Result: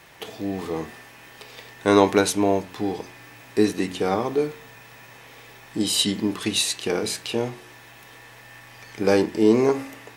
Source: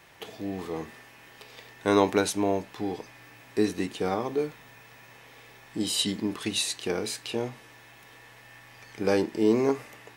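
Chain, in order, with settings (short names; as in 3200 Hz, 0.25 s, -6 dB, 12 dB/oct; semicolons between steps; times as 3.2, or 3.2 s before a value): de-hum 90.69 Hz, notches 38; gain +5.5 dB; SBC 128 kbps 44100 Hz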